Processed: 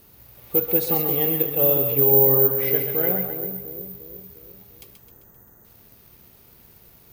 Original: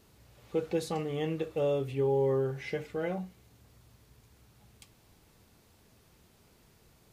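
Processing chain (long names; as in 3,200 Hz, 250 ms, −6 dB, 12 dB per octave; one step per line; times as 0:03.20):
gain on a spectral selection 0:04.95–0:05.65, 2,000–5,900 Hz −17 dB
echo with a time of its own for lows and highs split 490 Hz, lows 352 ms, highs 131 ms, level −6 dB
bad sample-rate conversion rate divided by 3×, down filtered, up zero stuff
level +5.5 dB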